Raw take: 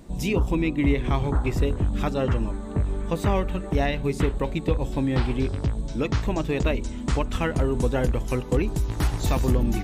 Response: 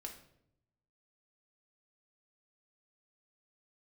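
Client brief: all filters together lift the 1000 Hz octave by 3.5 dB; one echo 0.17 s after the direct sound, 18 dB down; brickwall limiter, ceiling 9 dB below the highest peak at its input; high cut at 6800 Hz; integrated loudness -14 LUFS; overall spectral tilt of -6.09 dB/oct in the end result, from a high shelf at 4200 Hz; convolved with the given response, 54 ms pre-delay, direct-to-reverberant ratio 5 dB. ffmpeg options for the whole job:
-filter_complex "[0:a]lowpass=6.8k,equalizer=f=1k:t=o:g=4,highshelf=f=4.2k:g=8,alimiter=limit=-18.5dB:level=0:latency=1,aecho=1:1:170:0.126,asplit=2[a][b];[1:a]atrim=start_sample=2205,adelay=54[c];[b][c]afir=irnorm=-1:irlink=0,volume=-1.5dB[d];[a][d]amix=inputs=2:normalize=0,volume=13dB"

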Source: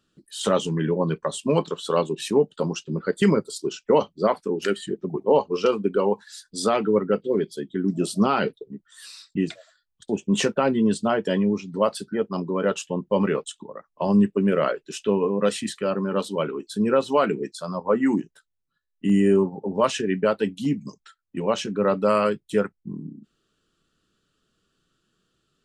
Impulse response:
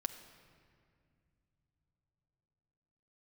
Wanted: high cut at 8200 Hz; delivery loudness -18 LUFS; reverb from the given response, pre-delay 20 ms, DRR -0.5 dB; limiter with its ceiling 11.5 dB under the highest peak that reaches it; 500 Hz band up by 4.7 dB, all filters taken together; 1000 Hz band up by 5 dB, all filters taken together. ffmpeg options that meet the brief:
-filter_complex "[0:a]lowpass=8.2k,equalizer=f=500:t=o:g=4.5,equalizer=f=1k:t=o:g=5,alimiter=limit=-15dB:level=0:latency=1,asplit=2[a][b];[1:a]atrim=start_sample=2205,adelay=20[c];[b][c]afir=irnorm=-1:irlink=0,volume=1dB[d];[a][d]amix=inputs=2:normalize=0,volume=4dB"

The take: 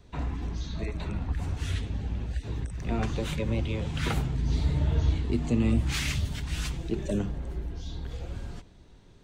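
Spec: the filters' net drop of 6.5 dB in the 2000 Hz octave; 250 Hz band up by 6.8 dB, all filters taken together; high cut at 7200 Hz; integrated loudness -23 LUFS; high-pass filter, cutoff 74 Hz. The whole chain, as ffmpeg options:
-af "highpass=74,lowpass=7.2k,equalizer=f=250:t=o:g=8.5,equalizer=f=2k:t=o:g=-8.5,volume=5.5dB"

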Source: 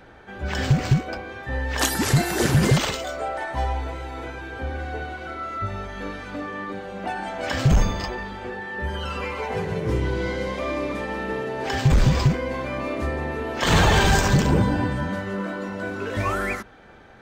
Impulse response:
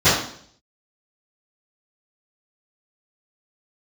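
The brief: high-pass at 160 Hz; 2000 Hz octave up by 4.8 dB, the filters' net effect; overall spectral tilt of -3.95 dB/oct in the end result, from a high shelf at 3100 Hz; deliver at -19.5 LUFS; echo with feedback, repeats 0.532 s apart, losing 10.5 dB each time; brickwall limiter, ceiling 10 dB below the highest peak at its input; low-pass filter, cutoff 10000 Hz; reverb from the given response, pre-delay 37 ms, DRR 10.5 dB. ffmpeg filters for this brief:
-filter_complex "[0:a]highpass=160,lowpass=10k,equalizer=f=2k:t=o:g=4,highshelf=f=3.1k:g=6.5,alimiter=limit=-14dB:level=0:latency=1,aecho=1:1:532|1064|1596:0.299|0.0896|0.0269,asplit=2[a][b];[1:a]atrim=start_sample=2205,adelay=37[c];[b][c]afir=irnorm=-1:irlink=0,volume=-34dB[d];[a][d]amix=inputs=2:normalize=0,volume=5.5dB"

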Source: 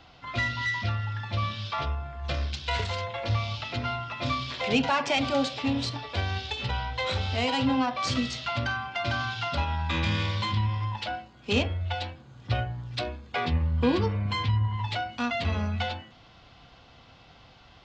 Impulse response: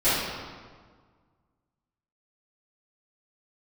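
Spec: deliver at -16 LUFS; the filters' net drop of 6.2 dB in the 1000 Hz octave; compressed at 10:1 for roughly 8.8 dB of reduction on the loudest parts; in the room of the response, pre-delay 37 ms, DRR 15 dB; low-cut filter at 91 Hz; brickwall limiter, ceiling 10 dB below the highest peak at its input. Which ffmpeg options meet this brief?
-filter_complex "[0:a]highpass=91,equalizer=f=1k:t=o:g=-8.5,acompressor=threshold=-29dB:ratio=10,alimiter=level_in=5.5dB:limit=-24dB:level=0:latency=1,volume=-5.5dB,asplit=2[a][b];[1:a]atrim=start_sample=2205,adelay=37[c];[b][c]afir=irnorm=-1:irlink=0,volume=-32dB[d];[a][d]amix=inputs=2:normalize=0,volume=21.5dB"

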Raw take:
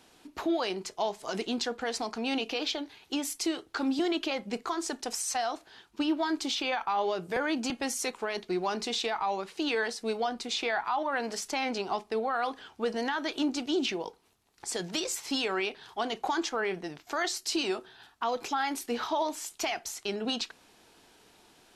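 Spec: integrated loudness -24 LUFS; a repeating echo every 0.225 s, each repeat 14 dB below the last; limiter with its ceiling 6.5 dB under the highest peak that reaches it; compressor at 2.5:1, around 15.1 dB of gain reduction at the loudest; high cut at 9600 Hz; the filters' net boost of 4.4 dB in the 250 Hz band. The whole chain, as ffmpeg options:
-af "lowpass=9.6k,equalizer=f=250:t=o:g=5.5,acompressor=threshold=-45dB:ratio=2.5,alimiter=level_in=11dB:limit=-24dB:level=0:latency=1,volume=-11dB,aecho=1:1:225|450:0.2|0.0399,volume=20dB"

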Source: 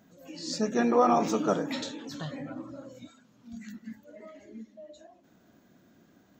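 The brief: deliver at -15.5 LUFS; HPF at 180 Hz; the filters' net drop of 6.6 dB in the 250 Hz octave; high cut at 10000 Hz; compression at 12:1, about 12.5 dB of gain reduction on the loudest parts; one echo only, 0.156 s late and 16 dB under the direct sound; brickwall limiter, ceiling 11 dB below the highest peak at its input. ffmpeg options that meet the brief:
-af "highpass=180,lowpass=10k,equalizer=f=250:t=o:g=-6.5,acompressor=threshold=-32dB:ratio=12,alimiter=level_in=10dB:limit=-24dB:level=0:latency=1,volume=-10dB,aecho=1:1:156:0.158,volume=30dB"

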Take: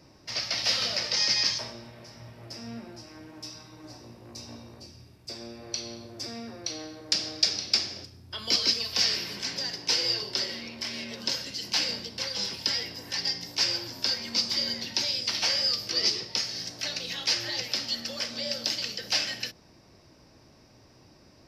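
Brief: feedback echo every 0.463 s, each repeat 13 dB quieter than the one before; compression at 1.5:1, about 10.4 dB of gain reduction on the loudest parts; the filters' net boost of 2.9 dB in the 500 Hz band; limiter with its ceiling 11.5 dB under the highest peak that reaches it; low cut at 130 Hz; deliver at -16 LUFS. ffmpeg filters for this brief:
-af "highpass=130,equalizer=f=500:t=o:g=3.5,acompressor=threshold=-50dB:ratio=1.5,alimiter=level_in=4dB:limit=-24dB:level=0:latency=1,volume=-4dB,aecho=1:1:463|926|1389:0.224|0.0493|0.0108,volume=23dB"

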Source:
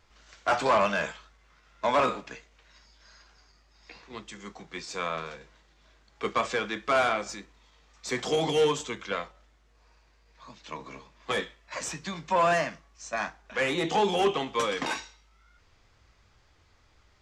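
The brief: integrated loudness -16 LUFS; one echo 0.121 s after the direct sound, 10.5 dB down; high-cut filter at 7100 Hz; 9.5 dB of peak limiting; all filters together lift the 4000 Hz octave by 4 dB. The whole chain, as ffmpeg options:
-af "lowpass=7.1k,equalizer=f=4k:t=o:g=5.5,alimiter=limit=-22dB:level=0:latency=1,aecho=1:1:121:0.299,volume=17dB"

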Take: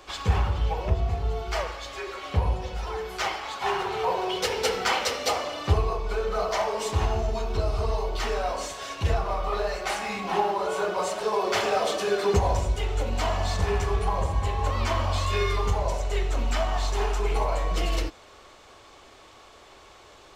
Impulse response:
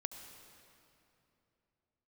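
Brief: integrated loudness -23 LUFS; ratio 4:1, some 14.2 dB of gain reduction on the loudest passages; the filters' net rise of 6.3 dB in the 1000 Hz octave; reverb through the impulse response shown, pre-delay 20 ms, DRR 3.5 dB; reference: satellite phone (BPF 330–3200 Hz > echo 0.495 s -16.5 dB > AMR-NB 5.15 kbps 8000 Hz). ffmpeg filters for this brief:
-filter_complex "[0:a]equalizer=f=1k:t=o:g=8,acompressor=threshold=-33dB:ratio=4,asplit=2[a][b];[1:a]atrim=start_sample=2205,adelay=20[c];[b][c]afir=irnorm=-1:irlink=0,volume=-2dB[d];[a][d]amix=inputs=2:normalize=0,highpass=330,lowpass=3.2k,aecho=1:1:495:0.15,volume=15dB" -ar 8000 -c:a libopencore_amrnb -b:a 5150

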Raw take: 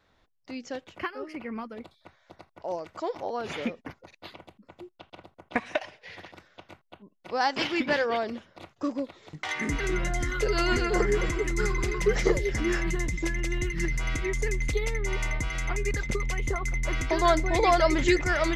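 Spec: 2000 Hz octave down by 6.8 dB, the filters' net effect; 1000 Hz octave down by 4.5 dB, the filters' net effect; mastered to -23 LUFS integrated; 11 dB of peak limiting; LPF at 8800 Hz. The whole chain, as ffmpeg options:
-af "lowpass=8.8k,equalizer=f=1k:t=o:g=-5,equalizer=f=2k:t=o:g=-6.5,volume=10dB,alimiter=limit=-11.5dB:level=0:latency=1"

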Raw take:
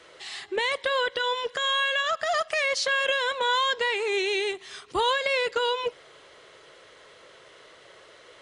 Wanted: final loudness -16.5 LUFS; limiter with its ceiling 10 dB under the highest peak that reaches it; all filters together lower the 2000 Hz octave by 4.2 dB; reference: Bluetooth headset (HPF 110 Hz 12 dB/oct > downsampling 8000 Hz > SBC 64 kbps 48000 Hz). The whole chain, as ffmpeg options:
-af "equalizer=f=2k:t=o:g=-5.5,alimiter=limit=-24dB:level=0:latency=1,highpass=110,aresample=8000,aresample=44100,volume=16dB" -ar 48000 -c:a sbc -b:a 64k

